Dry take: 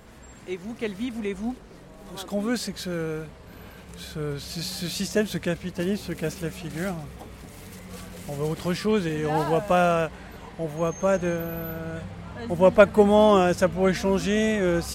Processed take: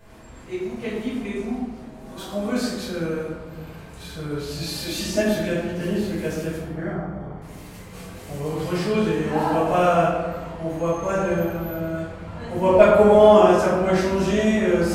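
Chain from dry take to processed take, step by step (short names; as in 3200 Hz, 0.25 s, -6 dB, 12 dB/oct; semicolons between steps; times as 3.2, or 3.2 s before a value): 4.67–5.35 comb 3.4 ms, depth 85%; 6.56–7.42 polynomial smoothing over 41 samples; reverb RT60 1.5 s, pre-delay 3 ms, DRR -11 dB; gain -9.5 dB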